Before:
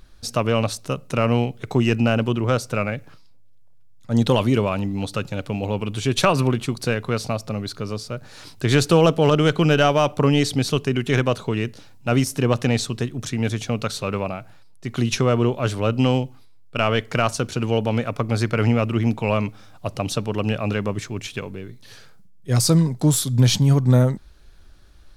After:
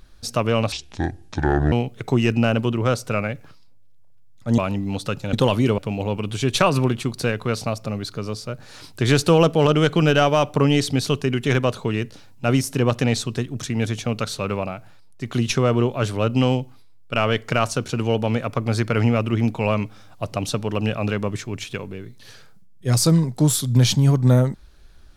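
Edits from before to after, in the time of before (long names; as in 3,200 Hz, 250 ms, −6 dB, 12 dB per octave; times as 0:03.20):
0:00.72–0:01.35: play speed 63%
0:04.21–0:04.66: move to 0:05.41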